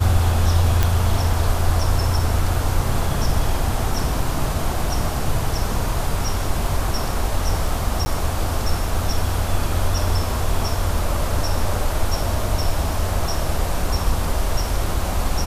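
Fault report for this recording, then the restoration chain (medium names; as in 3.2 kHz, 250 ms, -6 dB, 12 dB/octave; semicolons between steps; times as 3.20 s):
0.83 s: pop
8.05–8.06 s: dropout 10 ms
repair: de-click; interpolate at 8.05 s, 10 ms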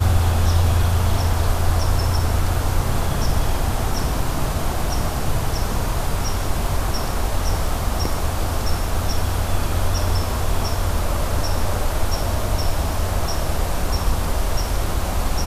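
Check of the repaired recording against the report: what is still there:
nothing left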